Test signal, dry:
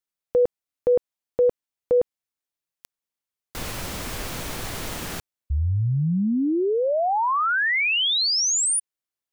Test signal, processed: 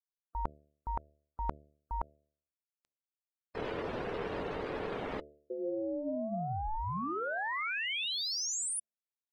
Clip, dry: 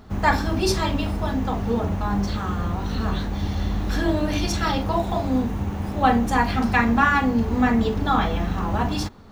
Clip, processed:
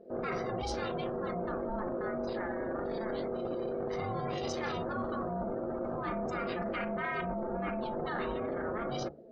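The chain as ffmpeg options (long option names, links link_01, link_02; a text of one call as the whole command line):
ffmpeg -i in.wav -af "adynamicsmooth=sensitivity=2:basefreq=6200,afftdn=noise_reduction=26:noise_floor=-36,areverse,acompressor=threshold=-33dB:ratio=10:attack=11:release=21:knee=1:detection=peak,areverse,aeval=exprs='val(0)*sin(2*PI*440*n/s)':channel_layout=same,bandreject=frequency=73.81:width_type=h:width=4,bandreject=frequency=147.62:width_type=h:width=4,bandreject=frequency=221.43:width_type=h:width=4,bandreject=frequency=295.24:width_type=h:width=4,bandreject=frequency=369.05:width_type=h:width=4,bandreject=frequency=442.86:width_type=h:width=4,bandreject=frequency=516.67:width_type=h:width=4,bandreject=frequency=590.48:width_type=h:width=4,bandreject=frequency=664.29:width_type=h:width=4" out.wav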